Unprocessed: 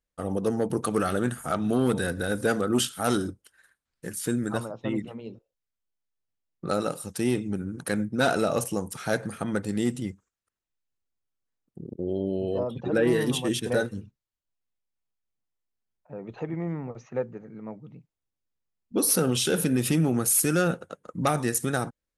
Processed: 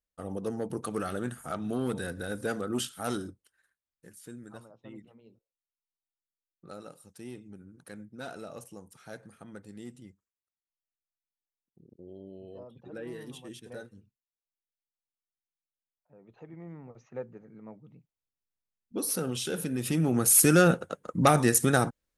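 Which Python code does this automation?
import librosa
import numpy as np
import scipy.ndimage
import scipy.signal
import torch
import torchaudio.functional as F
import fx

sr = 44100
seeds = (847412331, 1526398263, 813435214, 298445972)

y = fx.gain(x, sr, db=fx.line((3.09, -7.5), (4.23, -18.0), (16.14, -18.0), (17.29, -8.0), (19.73, -8.0), (20.42, 3.5)))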